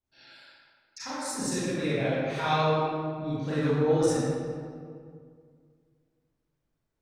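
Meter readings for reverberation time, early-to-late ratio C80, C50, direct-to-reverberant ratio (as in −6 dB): 2.1 s, −2.0 dB, −5.5 dB, −11.5 dB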